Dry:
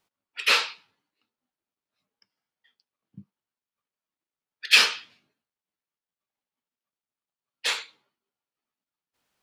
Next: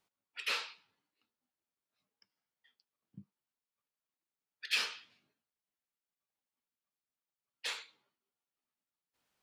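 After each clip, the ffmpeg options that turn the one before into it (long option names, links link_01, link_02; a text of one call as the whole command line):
ffmpeg -i in.wav -af "acompressor=threshold=-44dB:ratio=1.5,volume=-5dB" out.wav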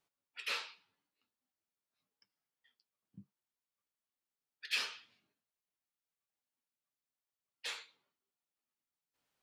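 ffmpeg -i in.wav -af "flanger=delay=6.9:depth=4.4:regen=-50:speed=0.44:shape=sinusoidal,volume=1dB" out.wav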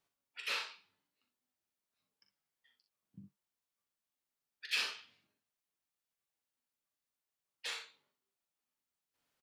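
ffmpeg -i in.wav -af "aecho=1:1:41|61:0.355|0.376" out.wav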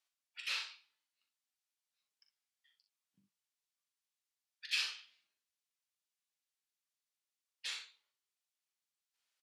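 ffmpeg -i in.wav -af "bandpass=frequency=5000:width_type=q:width=0.52:csg=0,volume=1dB" out.wav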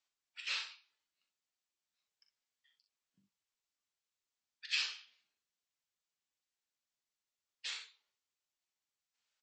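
ffmpeg -i in.wav -ar 22050 -c:a libmp3lame -b:a 32k out.mp3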